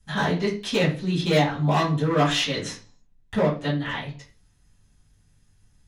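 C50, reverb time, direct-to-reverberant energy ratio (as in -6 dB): 8.0 dB, 0.40 s, -12.0 dB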